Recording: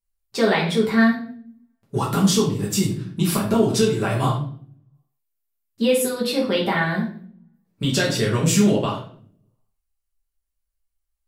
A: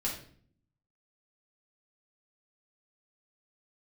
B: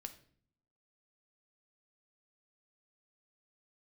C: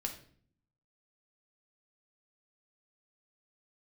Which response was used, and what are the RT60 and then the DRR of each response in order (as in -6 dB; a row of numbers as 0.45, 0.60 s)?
A; 0.50, 0.55, 0.50 s; -5.0, 7.0, 2.5 dB